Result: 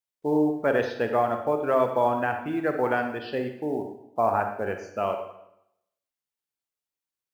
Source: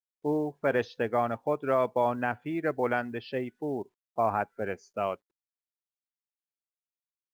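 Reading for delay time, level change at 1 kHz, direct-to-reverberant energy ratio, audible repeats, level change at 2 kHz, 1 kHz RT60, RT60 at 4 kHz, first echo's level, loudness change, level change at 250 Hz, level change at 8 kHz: no echo, +4.5 dB, 5.0 dB, no echo, +3.5 dB, 0.80 s, 0.70 s, no echo, +4.0 dB, +5.0 dB, no reading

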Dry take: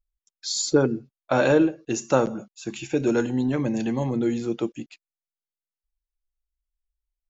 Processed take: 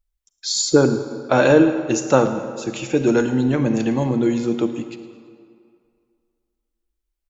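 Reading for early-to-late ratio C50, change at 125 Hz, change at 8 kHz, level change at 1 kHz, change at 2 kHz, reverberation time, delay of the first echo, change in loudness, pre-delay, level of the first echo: 9.5 dB, +5.5 dB, no reading, +5.5 dB, +5.5 dB, 2.2 s, 110 ms, +5.0 dB, 35 ms, -19.0 dB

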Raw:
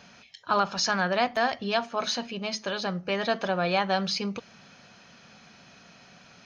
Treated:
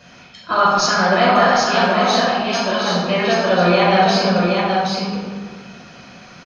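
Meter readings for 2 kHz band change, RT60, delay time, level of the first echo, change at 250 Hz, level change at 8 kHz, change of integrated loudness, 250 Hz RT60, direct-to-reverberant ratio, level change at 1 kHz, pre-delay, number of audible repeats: +11.5 dB, 1.8 s, 772 ms, -4.0 dB, +13.5 dB, no reading, +11.5 dB, 2.3 s, -8.5 dB, +13.5 dB, 5 ms, 1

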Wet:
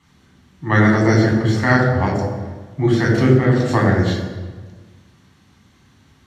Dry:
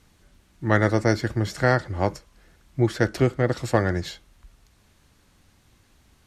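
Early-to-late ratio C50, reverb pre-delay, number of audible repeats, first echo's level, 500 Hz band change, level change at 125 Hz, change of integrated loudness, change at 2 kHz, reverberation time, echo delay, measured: 3.0 dB, 3 ms, no echo, no echo, +5.0 dB, +8.5 dB, +7.0 dB, +7.0 dB, 1.4 s, no echo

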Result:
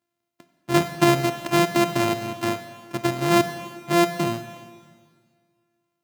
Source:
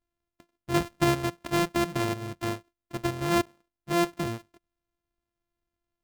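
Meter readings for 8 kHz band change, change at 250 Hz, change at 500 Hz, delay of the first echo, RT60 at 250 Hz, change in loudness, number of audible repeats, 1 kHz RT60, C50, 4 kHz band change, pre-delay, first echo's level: +6.5 dB, +6.0 dB, +7.0 dB, no echo, 1.9 s, +6.0 dB, no echo, 1.9 s, 11.0 dB, +6.5 dB, 28 ms, no echo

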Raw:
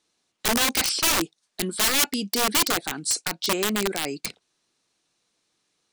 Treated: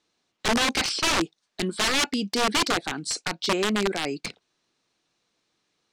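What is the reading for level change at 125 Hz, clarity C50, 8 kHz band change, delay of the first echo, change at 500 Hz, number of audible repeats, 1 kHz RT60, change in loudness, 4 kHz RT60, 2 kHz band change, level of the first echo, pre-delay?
+1.5 dB, no reverb, -6.0 dB, no echo, +1.5 dB, no echo, no reverb, -2.0 dB, no reverb, +0.5 dB, no echo, no reverb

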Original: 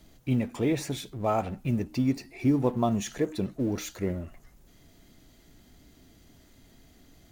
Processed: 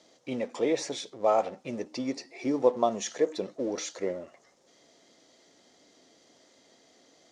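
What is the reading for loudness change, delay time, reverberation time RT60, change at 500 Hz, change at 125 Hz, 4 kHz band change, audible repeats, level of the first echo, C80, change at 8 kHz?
-1.0 dB, no echo, no reverb, +4.0 dB, -17.5 dB, +2.0 dB, no echo, no echo, no reverb, +2.5 dB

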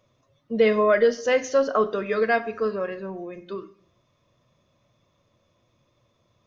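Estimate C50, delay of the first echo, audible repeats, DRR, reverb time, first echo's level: 16.5 dB, no echo, no echo, 10.5 dB, 0.55 s, no echo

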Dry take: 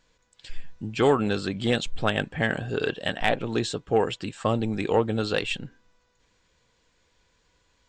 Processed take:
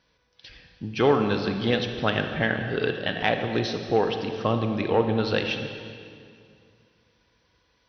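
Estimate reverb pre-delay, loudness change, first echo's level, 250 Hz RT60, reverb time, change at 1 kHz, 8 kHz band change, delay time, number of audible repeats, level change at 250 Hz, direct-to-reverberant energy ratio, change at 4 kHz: 32 ms, +1.0 dB, no echo, 2.5 s, 2.3 s, +1.0 dB, no reading, no echo, no echo, +1.0 dB, 5.5 dB, +1.0 dB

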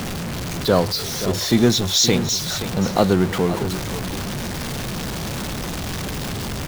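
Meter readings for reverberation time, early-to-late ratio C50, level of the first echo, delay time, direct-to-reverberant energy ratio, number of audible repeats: no reverb, no reverb, -12.5 dB, 525 ms, no reverb, 1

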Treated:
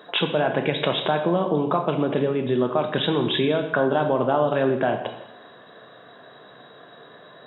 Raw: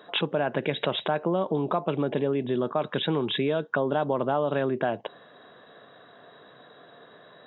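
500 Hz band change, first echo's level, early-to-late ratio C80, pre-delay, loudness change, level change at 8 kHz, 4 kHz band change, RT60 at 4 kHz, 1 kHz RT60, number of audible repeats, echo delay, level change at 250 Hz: +4.5 dB, no echo, 10.0 dB, 6 ms, +4.5 dB, no reading, +5.0 dB, 0.80 s, 0.85 s, no echo, no echo, +4.5 dB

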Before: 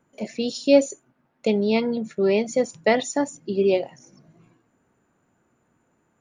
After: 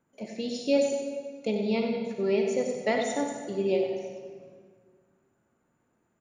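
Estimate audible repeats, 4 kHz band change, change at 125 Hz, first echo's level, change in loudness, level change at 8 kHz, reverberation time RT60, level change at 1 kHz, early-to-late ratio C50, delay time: 1, -6.0 dB, -5.5 dB, -9.0 dB, -6.0 dB, -6.5 dB, 1.8 s, -5.5 dB, 3.0 dB, 95 ms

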